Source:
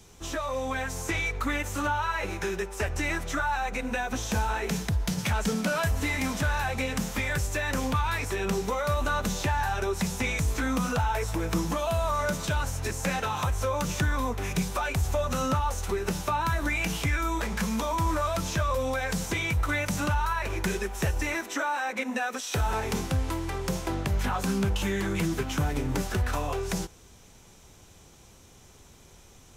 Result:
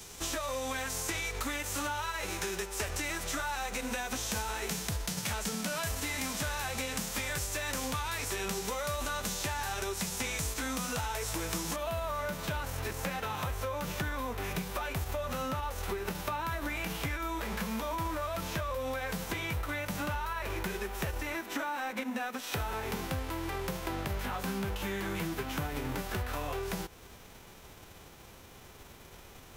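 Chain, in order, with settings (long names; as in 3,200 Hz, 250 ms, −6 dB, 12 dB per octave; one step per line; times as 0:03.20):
spectral envelope flattened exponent 0.6
parametric band 7,400 Hz +3 dB 1.8 octaves, from 0:11.76 −10 dB
downward compressor 6 to 1, threshold −36 dBFS, peak gain reduction 14 dB
level +3.5 dB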